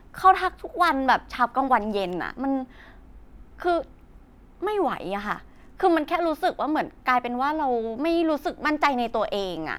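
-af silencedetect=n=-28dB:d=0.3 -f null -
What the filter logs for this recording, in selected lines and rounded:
silence_start: 2.63
silence_end: 3.60 | silence_duration: 0.97
silence_start: 3.82
silence_end: 4.63 | silence_duration: 0.81
silence_start: 5.36
silence_end: 5.80 | silence_duration: 0.44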